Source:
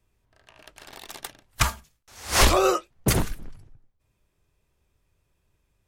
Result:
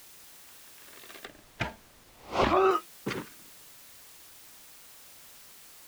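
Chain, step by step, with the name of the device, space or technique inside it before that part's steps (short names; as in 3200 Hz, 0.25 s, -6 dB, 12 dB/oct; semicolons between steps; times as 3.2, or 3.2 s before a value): shortwave radio (BPF 270–2800 Hz; tremolo 0.74 Hz, depth 66%; LFO notch saw up 0.41 Hz 460–1800 Hz; white noise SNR 16 dB); 1.25–2.71 tilt -2.5 dB/oct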